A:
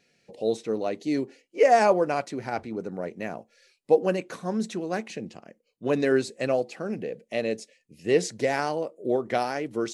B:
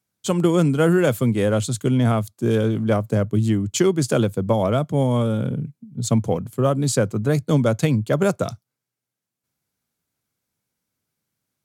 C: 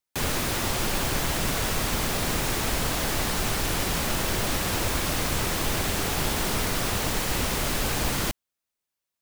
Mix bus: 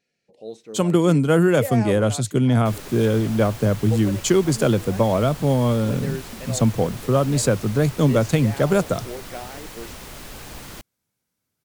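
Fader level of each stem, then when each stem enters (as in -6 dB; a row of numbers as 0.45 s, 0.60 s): -10.0 dB, +0.5 dB, -11.5 dB; 0.00 s, 0.50 s, 2.50 s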